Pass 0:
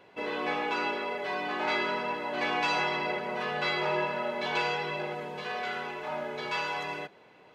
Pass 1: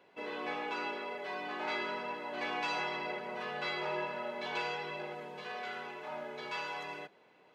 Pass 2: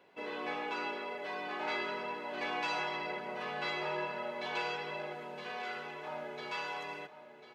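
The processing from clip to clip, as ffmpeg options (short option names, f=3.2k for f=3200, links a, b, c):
-af "highpass=150,volume=-7dB"
-af "aecho=1:1:1046:0.237"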